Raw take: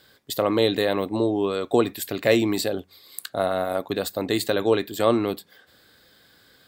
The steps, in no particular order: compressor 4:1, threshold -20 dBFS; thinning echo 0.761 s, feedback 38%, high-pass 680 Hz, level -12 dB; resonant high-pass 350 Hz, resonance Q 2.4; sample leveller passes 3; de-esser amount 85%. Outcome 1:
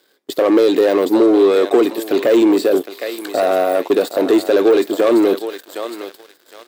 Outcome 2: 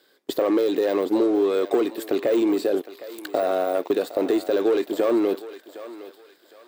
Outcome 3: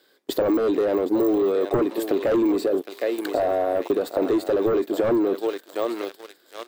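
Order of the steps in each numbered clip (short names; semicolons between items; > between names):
compressor > thinning echo > de-esser > sample leveller > resonant high-pass; sample leveller > resonant high-pass > compressor > de-esser > thinning echo; thinning echo > sample leveller > resonant high-pass > de-esser > compressor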